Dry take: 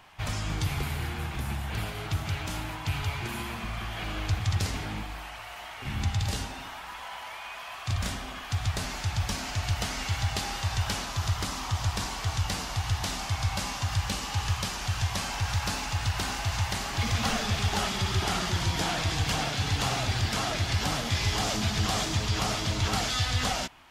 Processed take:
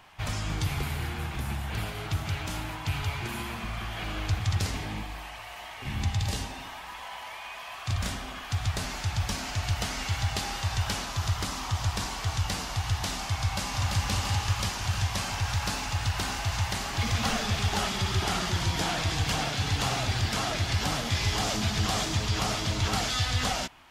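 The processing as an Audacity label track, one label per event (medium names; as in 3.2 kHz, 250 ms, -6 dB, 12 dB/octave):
4.760000	7.770000	band-stop 1.4 kHz, Q 8.7
13.390000	14.020000	echo throw 340 ms, feedback 70%, level -3 dB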